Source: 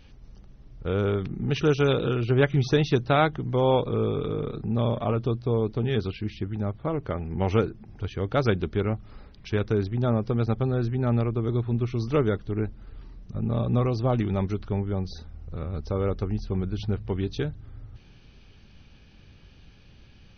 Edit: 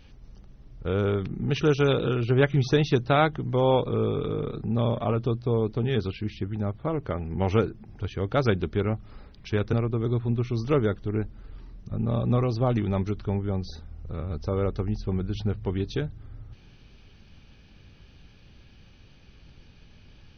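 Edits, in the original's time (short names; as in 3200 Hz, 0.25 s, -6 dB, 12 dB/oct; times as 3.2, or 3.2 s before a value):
9.73–11.16 cut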